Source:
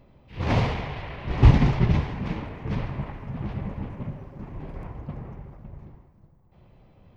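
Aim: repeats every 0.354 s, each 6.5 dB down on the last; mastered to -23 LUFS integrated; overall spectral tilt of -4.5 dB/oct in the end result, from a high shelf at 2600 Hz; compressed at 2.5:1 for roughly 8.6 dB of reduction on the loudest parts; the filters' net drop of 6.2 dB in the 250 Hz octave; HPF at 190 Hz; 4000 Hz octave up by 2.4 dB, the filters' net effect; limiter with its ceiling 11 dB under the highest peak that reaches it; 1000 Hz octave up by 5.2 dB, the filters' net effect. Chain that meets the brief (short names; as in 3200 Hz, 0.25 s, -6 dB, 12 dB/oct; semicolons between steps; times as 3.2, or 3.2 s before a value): HPF 190 Hz; bell 250 Hz -5.5 dB; bell 1000 Hz +7 dB; high shelf 2600 Hz -5 dB; bell 4000 Hz +7 dB; compressor 2.5:1, threshold -31 dBFS; limiter -28.5 dBFS; feedback echo 0.354 s, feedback 47%, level -6.5 dB; gain +15.5 dB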